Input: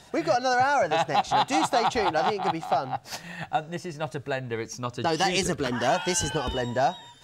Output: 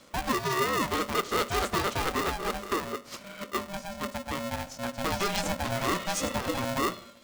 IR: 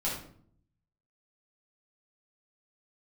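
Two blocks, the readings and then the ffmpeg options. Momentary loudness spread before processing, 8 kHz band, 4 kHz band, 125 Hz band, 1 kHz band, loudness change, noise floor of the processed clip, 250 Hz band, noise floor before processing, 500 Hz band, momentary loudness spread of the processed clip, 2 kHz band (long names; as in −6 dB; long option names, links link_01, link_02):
11 LU, −3.0 dB, −3.0 dB, −3.0 dB, −6.5 dB, −4.0 dB, −49 dBFS, −2.0 dB, −50 dBFS, −5.0 dB, 9 LU, −3.0 dB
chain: -filter_complex "[0:a]lowshelf=frequency=210:gain=9,afreqshift=34,asplit=2[link_01][link_02];[1:a]atrim=start_sample=2205[link_03];[link_02][link_03]afir=irnorm=-1:irlink=0,volume=-19.5dB[link_04];[link_01][link_04]amix=inputs=2:normalize=0,aeval=exprs='val(0)*sgn(sin(2*PI*400*n/s))':channel_layout=same,volume=-7dB"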